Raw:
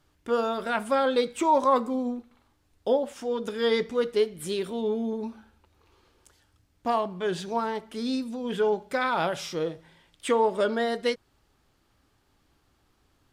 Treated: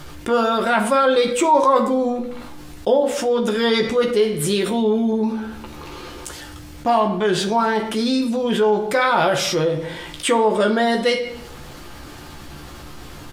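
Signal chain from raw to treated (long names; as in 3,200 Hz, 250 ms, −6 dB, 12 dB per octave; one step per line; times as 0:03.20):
double-tracking delay 14 ms −5.5 dB
convolution reverb RT60 0.50 s, pre-delay 6 ms, DRR 7.5 dB
envelope flattener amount 50%
level +2.5 dB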